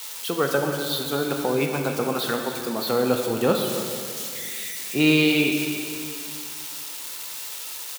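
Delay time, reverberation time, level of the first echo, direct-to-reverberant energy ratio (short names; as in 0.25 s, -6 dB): 0.277 s, 2.4 s, -14.0 dB, 2.5 dB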